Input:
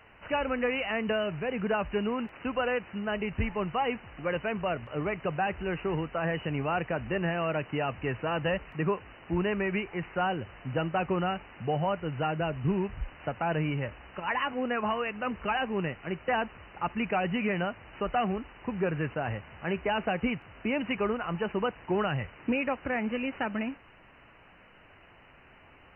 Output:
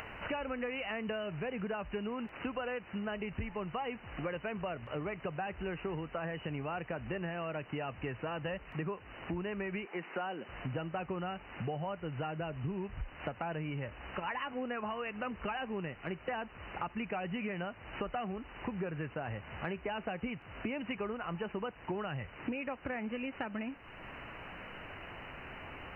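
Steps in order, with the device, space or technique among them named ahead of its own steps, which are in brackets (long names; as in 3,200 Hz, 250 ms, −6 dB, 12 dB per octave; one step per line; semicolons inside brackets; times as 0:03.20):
0:09.85–0:10.49: high-pass filter 210 Hz 24 dB per octave
upward and downward compression (upward compression, threshold −45 dBFS; downward compressor 6 to 1, threshold −41 dBFS, peak gain reduction 16.5 dB)
level +5 dB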